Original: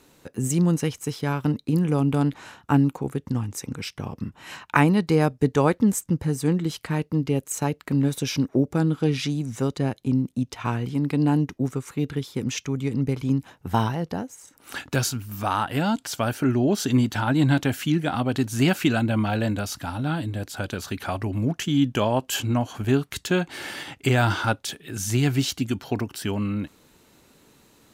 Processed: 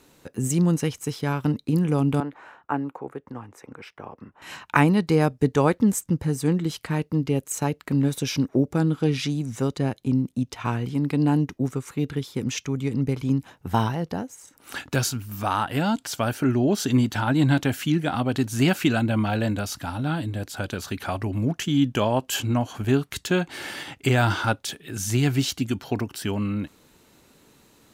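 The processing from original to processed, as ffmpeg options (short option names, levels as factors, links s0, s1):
-filter_complex "[0:a]asettb=1/sr,asplit=3[s0][s1][s2];[s0]atrim=end=2.204[s3];[s1]atrim=start=2.2:end=4.42,asetpts=PTS-STARTPTS,afade=t=in:d=0.004:c=qsin,afade=t=out:st=2.216:d=0.004:c=qsin,acrossover=split=370 2100:gain=0.158 1 0.112[s4][s5][s6];[s4][s5][s6]amix=inputs=3:normalize=0[s7];[s2]atrim=start=4.416[s8];[s3][s7]acrossfade=d=0.004:c1=hsin:c2=qsin[s9];[s9][s8]acrossfade=d=0.004:c1=qsin:c2=hsin"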